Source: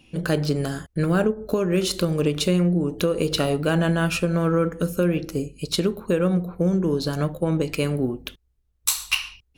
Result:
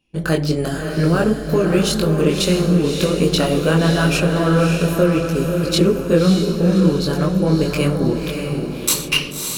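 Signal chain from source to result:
multi-voice chorus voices 6, 1.4 Hz, delay 22 ms, depth 3 ms
noise gate −37 dBFS, range −19 dB
feedback delay with all-pass diffusion 590 ms, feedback 47%, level −4.5 dB
level +7.5 dB

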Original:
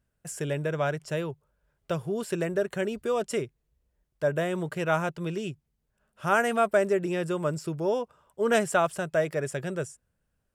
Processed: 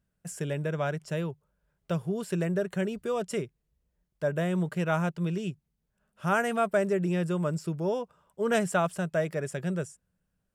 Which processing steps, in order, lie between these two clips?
parametric band 180 Hz +10 dB 0.33 octaves
level −3 dB

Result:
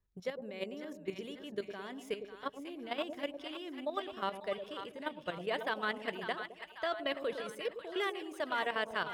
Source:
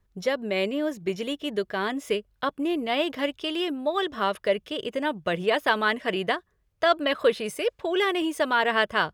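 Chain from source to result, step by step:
output level in coarse steps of 12 dB
echo with a time of its own for lows and highs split 800 Hz, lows 107 ms, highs 545 ms, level −8 dB
level −9 dB

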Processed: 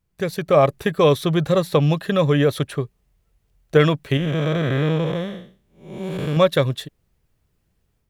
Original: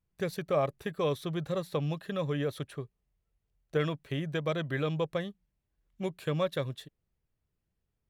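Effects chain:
0:04.17–0:06.37: spectrum smeared in time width 273 ms
automatic gain control gain up to 6.5 dB
level +8 dB

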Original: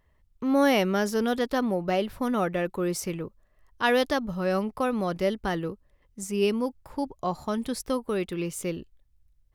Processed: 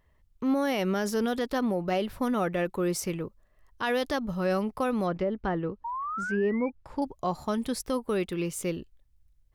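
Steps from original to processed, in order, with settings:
brickwall limiter −18.5 dBFS, peak gain reduction 8 dB
0:05.84–0:06.70: sound drawn into the spectrogram rise 910–2,400 Hz −33 dBFS
0:05.06–0:07.02: treble cut that deepens with the level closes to 1,100 Hz, closed at −23.5 dBFS

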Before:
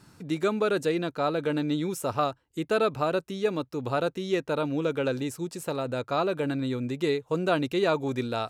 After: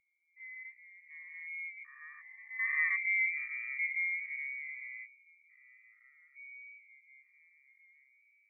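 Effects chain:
spectrum averaged block by block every 400 ms
source passing by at 0:03.26, 28 m/s, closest 19 metres
voice inversion scrambler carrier 2,500 Hz
high-pass filter 710 Hz
every bin expanded away from the loudest bin 2.5 to 1

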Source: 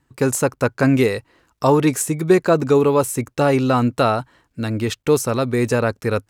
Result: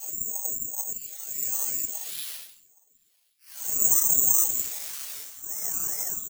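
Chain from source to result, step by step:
on a send: single-tap delay 99 ms −24 dB
on the sum: reverb reduction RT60 2 s
extreme stretch with random phases 9.5×, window 0.05 s, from 0:04.69
rectangular room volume 660 cubic metres, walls furnished, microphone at 4.1 metres
bad sample-rate conversion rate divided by 6×, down none, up zero stuff
guitar amp tone stack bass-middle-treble 5-5-5
in parallel at −5.5 dB: soft clipping −34.5 dBFS, distortion 5 dB
on the sum: ring modulator whose carrier an LFO sweeps 440 Hz, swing 85%, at 2.5 Hz
level −14 dB

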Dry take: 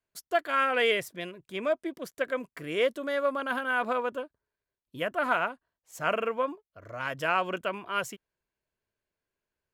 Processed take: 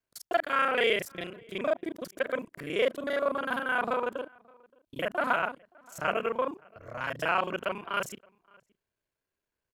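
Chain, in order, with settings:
reversed piece by piece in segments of 31 ms
slap from a distant wall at 98 metres, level −27 dB

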